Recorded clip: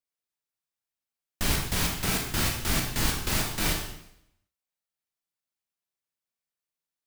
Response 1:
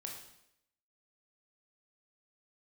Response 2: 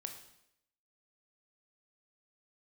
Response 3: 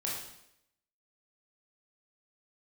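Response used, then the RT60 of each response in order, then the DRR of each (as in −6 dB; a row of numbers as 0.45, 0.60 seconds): 1; 0.75, 0.75, 0.75 seconds; −0.5, 4.5, −5.0 decibels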